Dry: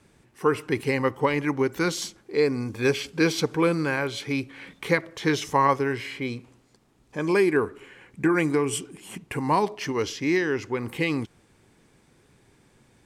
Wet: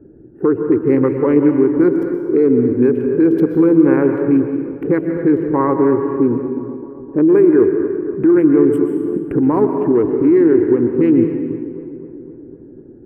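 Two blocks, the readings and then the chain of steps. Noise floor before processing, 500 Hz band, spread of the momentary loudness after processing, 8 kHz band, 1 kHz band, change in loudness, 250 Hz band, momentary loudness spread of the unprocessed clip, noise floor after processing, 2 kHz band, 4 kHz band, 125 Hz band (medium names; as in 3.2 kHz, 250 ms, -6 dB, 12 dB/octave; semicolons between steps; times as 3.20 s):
-62 dBFS, +11.5 dB, 11 LU, under -20 dB, +1.0 dB, +11.0 dB, +15.0 dB, 10 LU, -39 dBFS, -5.0 dB, under -20 dB, +7.0 dB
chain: local Wiener filter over 41 samples; in parallel at -0.5 dB: compression, threshold -34 dBFS, peak gain reduction 17 dB; on the sum: FFT filter 190 Hz 0 dB, 320 Hz +14 dB, 710 Hz -2 dB, 1.5 kHz -1 dB, 3.6 kHz -25 dB, 6.3 kHz -30 dB, 13 kHz -5 dB; on a send: filtered feedback delay 257 ms, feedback 70%, low-pass 2 kHz, level -18 dB; on the sum: peak limiter -11.5 dBFS, peak gain reduction 11.5 dB; plate-style reverb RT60 1.5 s, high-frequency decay 0.95×, pre-delay 110 ms, DRR 5.5 dB; trim +5.5 dB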